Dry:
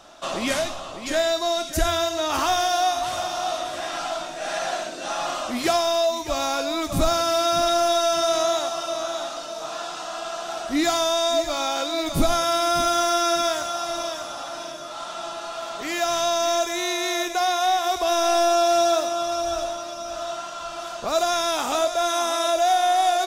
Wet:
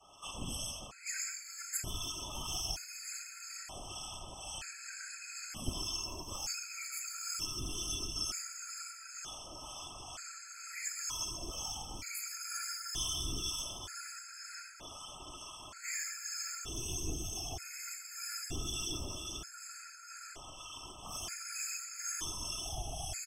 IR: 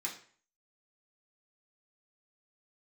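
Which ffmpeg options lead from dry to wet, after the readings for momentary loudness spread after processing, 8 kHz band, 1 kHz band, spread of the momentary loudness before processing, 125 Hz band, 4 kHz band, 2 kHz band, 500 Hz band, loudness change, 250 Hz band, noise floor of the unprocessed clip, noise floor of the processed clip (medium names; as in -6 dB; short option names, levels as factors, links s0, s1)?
10 LU, -7.5 dB, -27.0 dB, 12 LU, -8.0 dB, -14.0 dB, -16.0 dB, -32.0 dB, -16.5 dB, -20.5 dB, -35 dBFS, -51 dBFS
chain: -filter_complex "[0:a]asplit=2[s0][s1];[s1]asoftclip=type=tanh:threshold=0.119,volume=0.473[s2];[s0][s2]amix=inputs=2:normalize=0,aecho=1:1:5.2:0.91[s3];[1:a]atrim=start_sample=2205[s4];[s3][s4]afir=irnorm=-1:irlink=0,acrossover=split=770[s5][s6];[s5]aeval=exprs='max(val(0),0)':c=same[s7];[s6]highshelf=f=4900:g=4[s8];[s7][s8]amix=inputs=2:normalize=0,asuperstop=centerf=3800:order=20:qfactor=4.9,equalizer=f=3100:t=o:w=0.41:g=2,aecho=1:1:135:0.501,afftfilt=real='hypot(re,im)*cos(2*PI*random(0))':imag='hypot(re,im)*sin(2*PI*random(1))':win_size=512:overlap=0.75,acrossover=split=230|3000[s9][s10][s11];[s10]acompressor=threshold=0.0112:ratio=8[s12];[s9][s12][s11]amix=inputs=3:normalize=0,acrossover=split=1000[s13][s14];[s13]aeval=exprs='val(0)*(1-0.5/2+0.5/2*cos(2*PI*2.1*n/s))':c=same[s15];[s14]aeval=exprs='val(0)*(1-0.5/2-0.5/2*cos(2*PI*2.1*n/s))':c=same[s16];[s15][s16]amix=inputs=2:normalize=0,afftfilt=real='re*gt(sin(2*PI*0.54*pts/sr)*(1-2*mod(floor(b*sr/1024/1300),2)),0)':imag='im*gt(sin(2*PI*0.54*pts/sr)*(1-2*mod(floor(b*sr/1024/1300),2)),0)':win_size=1024:overlap=0.75,volume=0.531"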